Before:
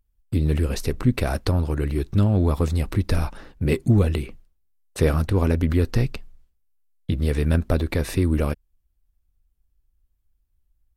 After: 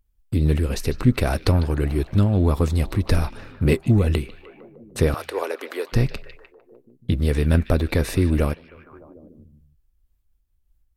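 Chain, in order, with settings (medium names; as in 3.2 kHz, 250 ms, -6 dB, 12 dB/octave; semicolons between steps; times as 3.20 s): 5.14–5.93 s: steep high-pass 400 Hz 36 dB/octave; repeats whose band climbs or falls 151 ms, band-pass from 3.3 kHz, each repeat -0.7 oct, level -10 dB; random flutter of the level, depth 50%; trim +4 dB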